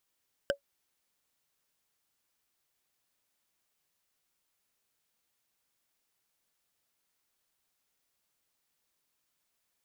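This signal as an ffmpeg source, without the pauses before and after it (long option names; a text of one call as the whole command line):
ffmpeg -f lavfi -i "aevalsrc='0.0944*pow(10,-3*t/0.1)*sin(2*PI*562*t)+0.0708*pow(10,-3*t/0.03)*sin(2*PI*1549.4*t)+0.0531*pow(10,-3*t/0.013)*sin(2*PI*3037*t)+0.0398*pow(10,-3*t/0.007)*sin(2*PI*5020.3*t)+0.0299*pow(10,-3*t/0.004)*sin(2*PI*7497.1*t)':duration=0.45:sample_rate=44100" out.wav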